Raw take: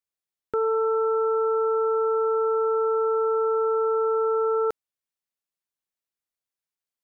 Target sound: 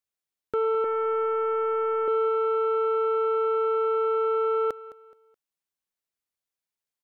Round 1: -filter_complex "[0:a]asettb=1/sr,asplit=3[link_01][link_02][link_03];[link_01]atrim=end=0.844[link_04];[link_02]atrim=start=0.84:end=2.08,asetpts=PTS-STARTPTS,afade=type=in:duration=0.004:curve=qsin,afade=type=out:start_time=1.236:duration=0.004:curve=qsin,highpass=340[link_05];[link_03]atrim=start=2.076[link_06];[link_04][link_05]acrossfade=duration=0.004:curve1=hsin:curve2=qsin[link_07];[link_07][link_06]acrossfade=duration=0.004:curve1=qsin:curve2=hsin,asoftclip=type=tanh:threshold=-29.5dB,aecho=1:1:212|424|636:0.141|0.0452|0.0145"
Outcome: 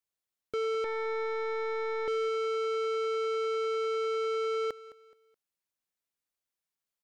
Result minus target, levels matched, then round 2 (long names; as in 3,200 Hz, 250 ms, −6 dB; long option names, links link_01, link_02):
soft clipping: distortion +13 dB
-filter_complex "[0:a]asettb=1/sr,asplit=3[link_01][link_02][link_03];[link_01]atrim=end=0.844[link_04];[link_02]atrim=start=0.84:end=2.08,asetpts=PTS-STARTPTS,afade=type=in:duration=0.004:curve=qsin,afade=type=out:start_time=1.236:duration=0.004:curve=qsin,highpass=340[link_05];[link_03]atrim=start=2.076[link_06];[link_04][link_05]acrossfade=duration=0.004:curve1=hsin:curve2=qsin[link_07];[link_07][link_06]acrossfade=duration=0.004:curve1=qsin:curve2=hsin,asoftclip=type=tanh:threshold=-17.5dB,aecho=1:1:212|424|636:0.141|0.0452|0.0145"